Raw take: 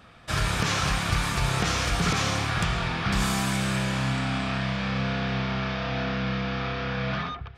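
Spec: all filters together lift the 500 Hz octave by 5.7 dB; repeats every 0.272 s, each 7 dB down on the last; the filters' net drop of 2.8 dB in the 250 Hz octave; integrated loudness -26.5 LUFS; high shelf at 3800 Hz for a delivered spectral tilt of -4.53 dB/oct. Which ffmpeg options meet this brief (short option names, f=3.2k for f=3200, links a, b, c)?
-af "equalizer=f=250:t=o:g=-6,equalizer=f=500:t=o:g=8.5,highshelf=f=3.8k:g=-4,aecho=1:1:272|544|816|1088|1360:0.447|0.201|0.0905|0.0407|0.0183,volume=-0.5dB"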